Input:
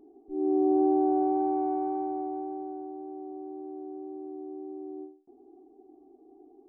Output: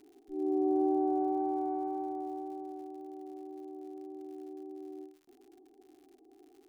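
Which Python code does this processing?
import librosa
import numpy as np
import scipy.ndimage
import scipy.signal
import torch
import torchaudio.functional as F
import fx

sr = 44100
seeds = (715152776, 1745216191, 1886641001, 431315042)

y = fx.dmg_crackle(x, sr, seeds[0], per_s=120.0, level_db=-48.0)
y = y * librosa.db_to_amplitude(-5.0)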